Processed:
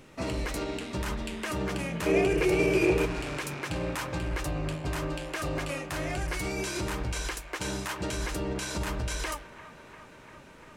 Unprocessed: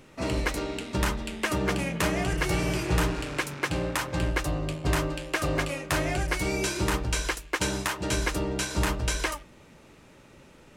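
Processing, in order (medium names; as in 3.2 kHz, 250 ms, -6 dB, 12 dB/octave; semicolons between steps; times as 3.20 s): peak limiter -23.5 dBFS, peak gain reduction 11 dB; 2.06–3.06 s: small resonant body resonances 410/2400 Hz, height 16 dB, ringing for 20 ms; on a send: feedback echo behind a band-pass 346 ms, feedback 79%, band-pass 1.2 kHz, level -14 dB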